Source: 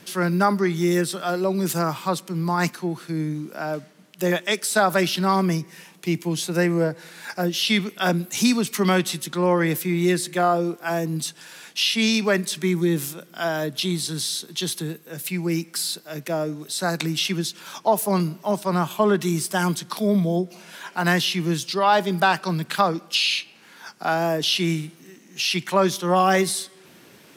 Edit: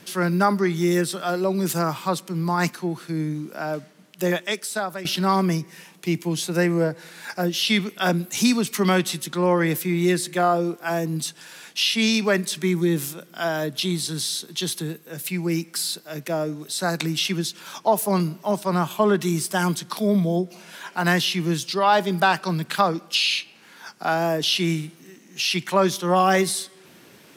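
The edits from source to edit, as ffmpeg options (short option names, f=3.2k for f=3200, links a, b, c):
-filter_complex "[0:a]asplit=2[a][b];[a]atrim=end=5.05,asetpts=PTS-STARTPTS,afade=t=out:st=4.22:d=0.83:silence=0.158489[c];[b]atrim=start=5.05,asetpts=PTS-STARTPTS,afade=t=in:d=0.004:c=hsin:silence=0.158489[d];[c][d]concat=n=2:v=0:a=1"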